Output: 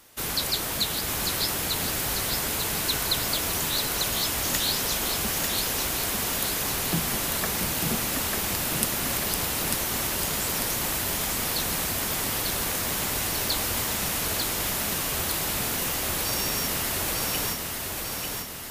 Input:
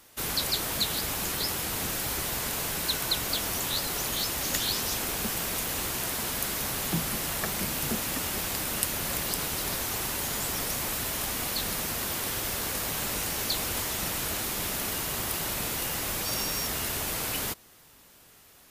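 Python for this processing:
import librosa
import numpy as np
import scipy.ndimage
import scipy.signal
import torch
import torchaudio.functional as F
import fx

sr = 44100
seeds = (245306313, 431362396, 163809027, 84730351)

y = fx.echo_feedback(x, sr, ms=895, feedback_pct=55, wet_db=-4)
y = y * 10.0 ** (1.5 / 20.0)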